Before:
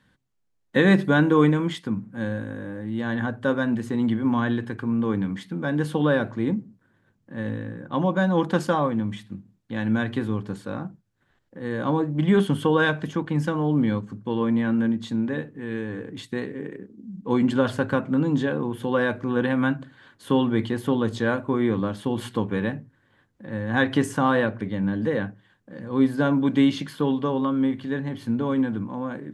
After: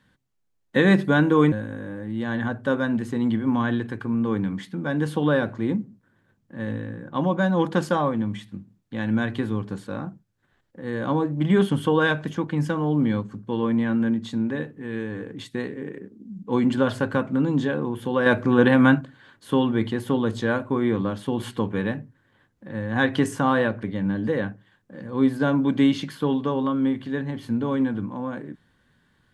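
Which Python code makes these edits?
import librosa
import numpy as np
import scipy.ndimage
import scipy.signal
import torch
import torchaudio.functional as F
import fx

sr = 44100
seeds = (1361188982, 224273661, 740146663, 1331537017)

y = fx.edit(x, sr, fx.cut(start_s=1.52, length_s=0.78),
    fx.clip_gain(start_s=19.04, length_s=0.75, db=6.5), tone=tone)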